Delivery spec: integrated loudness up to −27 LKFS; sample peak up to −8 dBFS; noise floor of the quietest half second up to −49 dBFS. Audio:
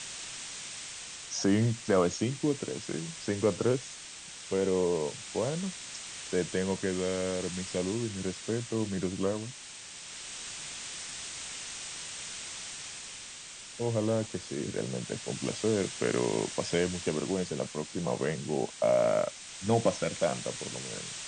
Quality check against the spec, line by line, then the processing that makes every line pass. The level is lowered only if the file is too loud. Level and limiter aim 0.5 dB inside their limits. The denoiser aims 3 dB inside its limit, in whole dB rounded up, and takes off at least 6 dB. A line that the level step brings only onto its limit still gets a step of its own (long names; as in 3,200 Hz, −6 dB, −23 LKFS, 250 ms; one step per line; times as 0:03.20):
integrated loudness −32.5 LKFS: in spec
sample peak −13.0 dBFS: in spec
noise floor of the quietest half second −46 dBFS: out of spec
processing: broadband denoise 6 dB, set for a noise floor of −46 dBFS